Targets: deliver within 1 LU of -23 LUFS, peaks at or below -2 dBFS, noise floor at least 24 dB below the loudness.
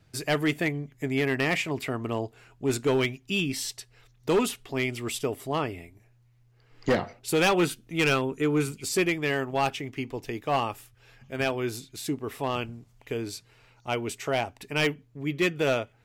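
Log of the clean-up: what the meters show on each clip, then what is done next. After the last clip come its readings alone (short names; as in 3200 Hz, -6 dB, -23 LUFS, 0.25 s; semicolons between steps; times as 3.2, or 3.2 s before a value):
clipped 1.1%; flat tops at -18.0 dBFS; loudness -28.5 LUFS; peak -18.0 dBFS; loudness target -23.0 LUFS
-> clip repair -18 dBFS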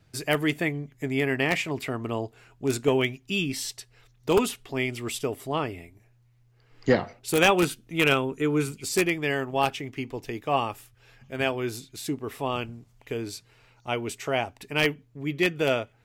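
clipped 0.0%; loudness -27.0 LUFS; peak -9.0 dBFS; loudness target -23.0 LUFS
-> gain +4 dB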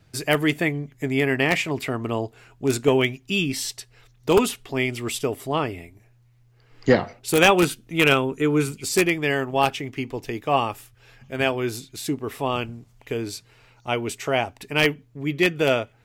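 loudness -23.0 LUFS; peak -5.0 dBFS; noise floor -58 dBFS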